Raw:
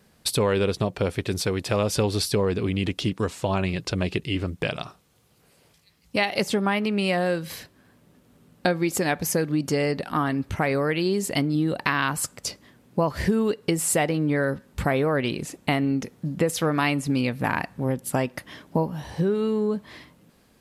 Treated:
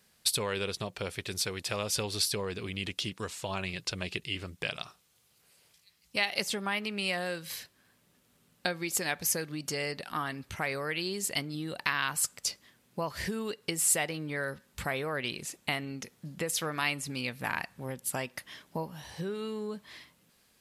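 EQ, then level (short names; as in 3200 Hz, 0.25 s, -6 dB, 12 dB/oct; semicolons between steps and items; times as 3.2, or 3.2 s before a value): tilt shelf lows -6.5 dB, about 1300 Hz; bell 280 Hz -4.5 dB 0.2 oct; -7.0 dB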